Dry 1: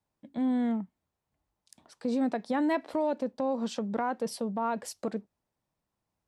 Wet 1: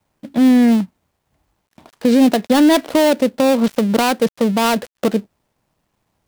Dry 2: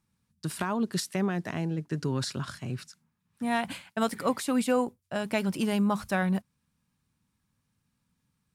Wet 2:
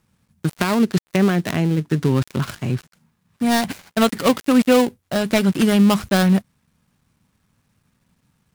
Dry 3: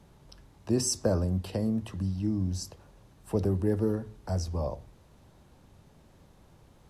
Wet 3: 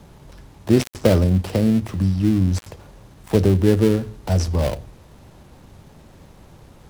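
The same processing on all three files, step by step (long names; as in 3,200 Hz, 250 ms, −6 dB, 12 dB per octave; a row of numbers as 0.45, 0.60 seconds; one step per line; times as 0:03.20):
gap after every zero crossing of 0.19 ms
dynamic equaliser 910 Hz, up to −4 dB, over −44 dBFS, Q 1.6
normalise the peak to −3 dBFS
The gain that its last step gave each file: +17.0, +12.0, +11.5 decibels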